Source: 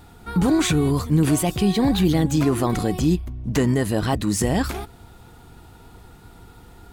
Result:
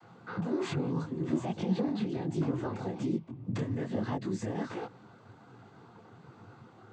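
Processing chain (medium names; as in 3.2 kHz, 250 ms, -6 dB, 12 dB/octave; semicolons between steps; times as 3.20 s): low-pass 1.6 kHz 6 dB/octave; hum notches 50/100/150 Hz; compression, threshold -25 dBFS, peak gain reduction 11.5 dB; noise-vocoded speech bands 16; detune thickener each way 43 cents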